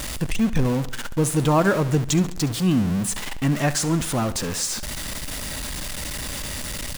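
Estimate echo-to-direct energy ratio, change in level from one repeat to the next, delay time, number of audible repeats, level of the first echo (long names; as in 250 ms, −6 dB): −15.0 dB, −5.5 dB, 69 ms, 3, −16.5 dB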